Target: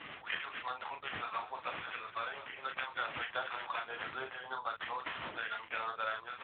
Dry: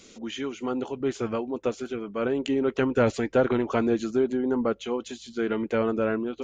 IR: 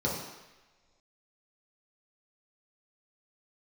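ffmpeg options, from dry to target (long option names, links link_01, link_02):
-filter_complex "[0:a]highpass=frequency=820:width=0.5412,highpass=frequency=820:width=1.3066,aemphasis=mode=production:type=bsi,alimiter=limit=-20.5dB:level=0:latency=1:release=335,acompressor=threshold=-38dB:ratio=3,aeval=exprs='val(0)+0.000708*(sin(2*PI*50*n/s)+sin(2*PI*2*50*n/s)/2+sin(2*PI*3*50*n/s)/3+sin(2*PI*4*50*n/s)/4+sin(2*PI*5*50*n/s)/5)':channel_layout=same,acrusher=samples=9:mix=1:aa=0.000001,asplit=2[link_01][link_02];[link_02]adelay=38,volume=-6dB[link_03];[link_01][link_03]amix=inputs=2:normalize=0,asplit=3[link_04][link_05][link_06];[link_04]afade=type=out:start_time=1.31:duration=0.02[link_07];[link_05]asplit=5[link_08][link_09][link_10][link_11][link_12];[link_09]adelay=203,afreqshift=-31,volume=-13dB[link_13];[link_10]adelay=406,afreqshift=-62,volume=-20.7dB[link_14];[link_11]adelay=609,afreqshift=-93,volume=-28.5dB[link_15];[link_12]adelay=812,afreqshift=-124,volume=-36.2dB[link_16];[link_08][link_13][link_14][link_15][link_16]amix=inputs=5:normalize=0,afade=type=in:start_time=1.31:duration=0.02,afade=type=out:start_time=3.84:duration=0.02[link_17];[link_06]afade=type=in:start_time=3.84:duration=0.02[link_18];[link_07][link_17][link_18]amix=inputs=3:normalize=0,volume=4.5dB" -ar 8000 -c:a libopencore_amrnb -b:a 6700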